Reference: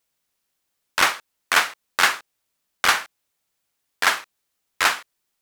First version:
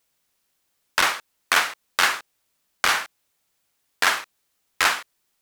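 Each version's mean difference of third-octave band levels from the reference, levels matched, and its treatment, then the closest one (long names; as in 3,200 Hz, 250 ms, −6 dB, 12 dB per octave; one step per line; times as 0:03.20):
2.5 dB: downward compressor, threshold −17 dBFS, peak gain reduction 6.5 dB
saturating transformer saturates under 2,600 Hz
level +4 dB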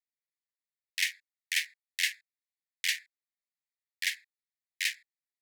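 14.5 dB: adaptive Wiener filter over 15 samples
Butterworth high-pass 1,800 Hz 96 dB per octave
level −7.5 dB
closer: first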